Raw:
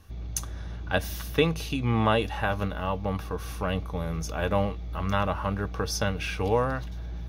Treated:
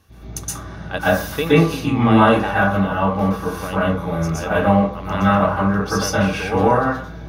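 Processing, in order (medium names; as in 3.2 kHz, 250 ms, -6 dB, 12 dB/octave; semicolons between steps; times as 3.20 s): high-pass 110 Hz 6 dB/octave; plate-style reverb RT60 0.53 s, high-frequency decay 0.35×, pre-delay 110 ms, DRR -9.5 dB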